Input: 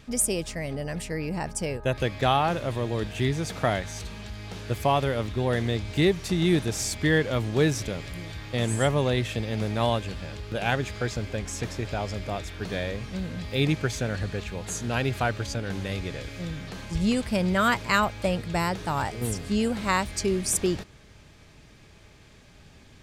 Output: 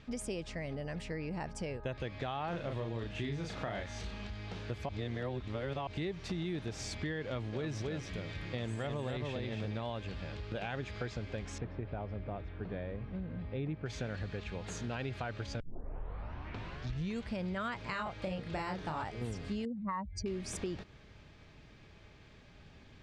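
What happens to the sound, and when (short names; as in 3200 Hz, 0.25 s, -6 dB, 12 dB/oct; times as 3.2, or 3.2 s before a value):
2.49–4.27 doubler 35 ms -4 dB
4.89–5.87 reverse
7.25–9.83 echo 0.277 s -4.5 dB
11.58–13.86 tape spacing loss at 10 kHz 44 dB
15.6 tape start 1.72 s
17.89–19.04 doubler 32 ms -3 dB
19.65–20.26 spectral contrast raised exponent 2.6
whole clip: LPF 4300 Hz 12 dB/oct; limiter -17 dBFS; compressor 3:1, threshold -32 dBFS; gain -4.5 dB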